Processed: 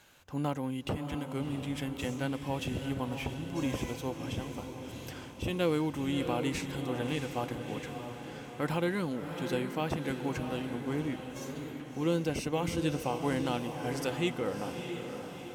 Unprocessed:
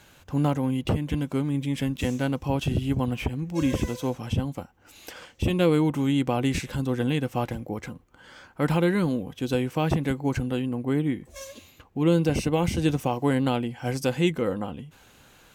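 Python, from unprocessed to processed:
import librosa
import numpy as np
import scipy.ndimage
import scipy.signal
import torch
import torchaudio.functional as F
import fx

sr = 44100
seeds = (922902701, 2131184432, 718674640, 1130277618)

y = fx.low_shelf(x, sr, hz=280.0, db=-7.0)
y = fx.echo_diffused(y, sr, ms=657, feedback_pct=56, wet_db=-7)
y = y * librosa.db_to_amplitude(-5.5)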